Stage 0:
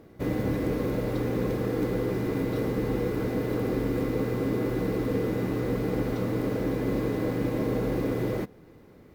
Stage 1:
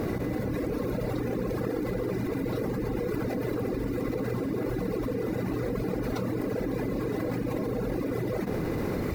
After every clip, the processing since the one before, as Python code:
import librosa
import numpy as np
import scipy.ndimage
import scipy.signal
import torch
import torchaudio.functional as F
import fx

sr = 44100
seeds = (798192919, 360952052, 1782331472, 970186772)

y = fx.dereverb_blind(x, sr, rt60_s=2.0)
y = fx.peak_eq(y, sr, hz=3200.0, db=-6.5, octaves=0.21)
y = fx.env_flatten(y, sr, amount_pct=100)
y = F.gain(torch.from_numpy(y), -3.5).numpy()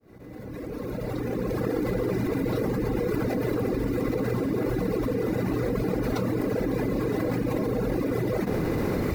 y = fx.fade_in_head(x, sr, length_s=1.78)
y = F.gain(torch.from_numpy(y), 3.5).numpy()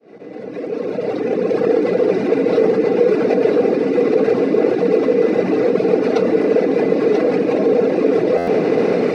y = fx.cabinet(x, sr, low_hz=180.0, low_slope=24, high_hz=7000.0, hz=(450.0, 690.0, 1000.0, 2600.0, 7000.0), db=(9, 8, -4, 6, -8))
y = y + 10.0 ** (-7.5 / 20.0) * np.pad(y, (int(987 * sr / 1000.0), 0))[:len(y)]
y = fx.buffer_glitch(y, sr, at_s=(8.37,), block=512, repeats=8)
y = F.gain(torch.from_numpy(y), 7.0).numpy()